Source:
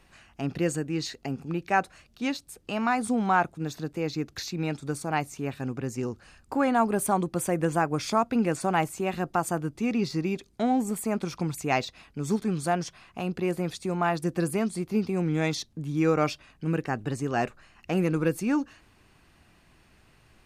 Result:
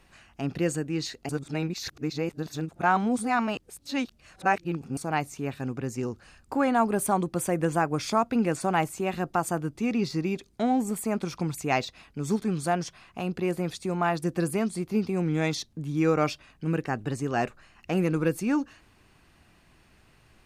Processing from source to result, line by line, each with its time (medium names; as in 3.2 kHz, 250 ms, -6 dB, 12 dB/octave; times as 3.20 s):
1.29–4.97 s: reverse